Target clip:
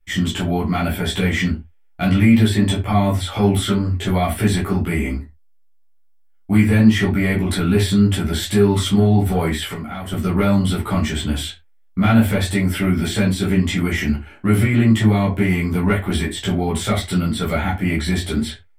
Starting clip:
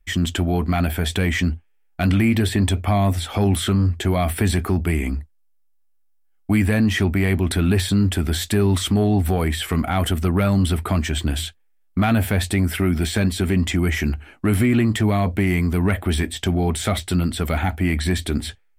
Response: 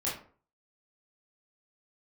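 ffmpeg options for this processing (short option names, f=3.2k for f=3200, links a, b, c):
-filter_complex "[0:a]asettb=1/sr,asplit=3[a][b][c];[a]atrim=end=9.624[d];[b]atrim=start=9.62:end=10.12,asetpts=PTS-STARTPTS,afade=t=in:d=0.004:c=qsin,afade=t=out:st=0.496:d=0.004:c=qsin,acompressor=threshold=-27dB:ratio=6[e];[c]atrim=start=10.116[f];[d][e]acrossfade=d=0.004:c1=hsin:c2=qsin[g];[g][f]acrossfade=d=0.004:c1=qsin:c2=hsin[h];[1:a]atrim=start_sample=2205,afade=t=out:st=0.28:d=0.01,atrim=end_sample=12789,asetrate=74970,aresample=44100[i];[h][i]afir=irnorm=-1:irlink=0,volume=1dB"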